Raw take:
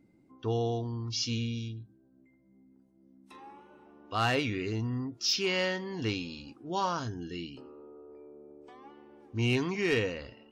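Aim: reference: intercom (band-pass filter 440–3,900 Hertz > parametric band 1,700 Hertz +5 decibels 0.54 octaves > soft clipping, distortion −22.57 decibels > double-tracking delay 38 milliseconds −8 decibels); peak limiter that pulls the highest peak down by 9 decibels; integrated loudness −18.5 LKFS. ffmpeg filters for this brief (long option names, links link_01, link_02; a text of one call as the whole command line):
ffmpeg -i in.wav -filter_complex "[0:a]alimiter=level_in=3.5dB:limit=-24dB:level=0:latency=1,volume=-3.5dB,highpass=440,lowpass=3900,equalizer=frequency=1700:width_type=o:width=0.54:gain=5,asoftclip=threshold=-26dB,asplit=2[link_01][link_02];[link_02]adelay=38,volume=-8dB[link_03];[link_01][link_03]amix=inputs=2:normalize=0,volume=22dB" out.wav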